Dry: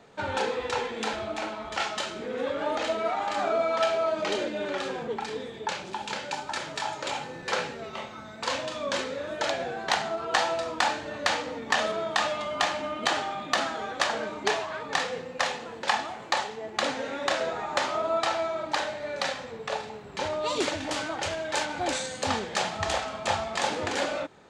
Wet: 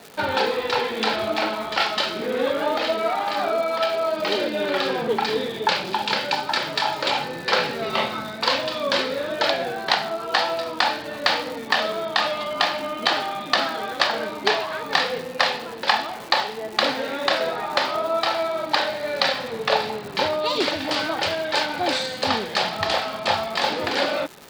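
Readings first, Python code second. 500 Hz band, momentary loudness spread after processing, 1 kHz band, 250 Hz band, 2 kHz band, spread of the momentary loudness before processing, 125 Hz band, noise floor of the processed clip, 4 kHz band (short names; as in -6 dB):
+5.5 dB, 2 LU, +5.5 dB, +6.0 dB, +6.5 dB, 7 LU, +3.5 dB, -34 dBFS, +9.0 dB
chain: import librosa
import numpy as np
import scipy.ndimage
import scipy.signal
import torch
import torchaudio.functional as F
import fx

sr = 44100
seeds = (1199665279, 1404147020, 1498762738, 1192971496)

y = scipy.signal.sosfilt(scipy.signal.butter(2, 120.0, 'highpass', fs=sr, output='sos'), x)
y = fx.high_shelf_res(y, sr, hz=5600.0, db=-6.0, q=3.0)
y = fx.rider(y, sr, range_db=10, speed_s=0.5)
y = fx.dmg_crackle(y, sr, seeds[0], per_s=310.0, level_db=-36.0)
y = y * librosa.db_to_amplitude(5.5)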